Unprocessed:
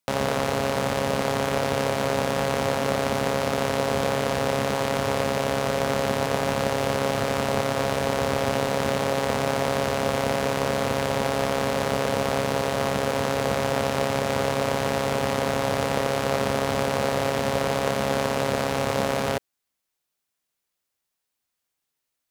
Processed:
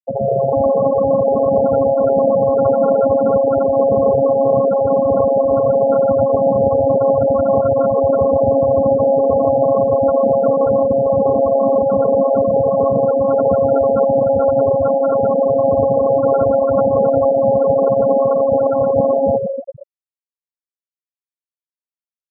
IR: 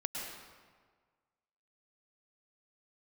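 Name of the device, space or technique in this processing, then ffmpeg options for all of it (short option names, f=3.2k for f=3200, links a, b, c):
compressed reverb return: -filter_complex "[0:a]lowpass=f=2.4k:w=0.5412,lowpass=f=2.4k:w=1.3066,asettb=1/sr,asplit=3[a][b][c];[a]atrim=end=14.704[d];[b]atrim=start=14.7:end=15.24,asetpts=PTS-STARTPTS,afade=t=in:d=0.004:c=qsin,afade=t=out:st=0.536:d=0.004:c=qsin,aemphasis=mode=production:type=75fm[e];[c]atrim=start=15.236[f];[d][e]acrossfade=d=0.004:c1=hsin:c2=qsin[g];[g][f]acrossfade=d=0.004:c1=qsin:c2=hsin,aecho=1:1:126|148|227|450|758:0.335|0.224|0.237|0.668|0.133,asplit=2[h][i];[1:a]atrim=start_sample=2205[j];[i][j]afir=irnorm=-1:irlink=0,acompressor=threshold=-22dB:ratio=6,volume=-11dB[k];[h][k]amix=inputs=2:normalize=0,afftfilt=real='re*gte(hypot(re,im),0.282)':imag='im*gte(hypot(re,im),0.282)':win_size=1024:overlap=0.75,volume=8dB"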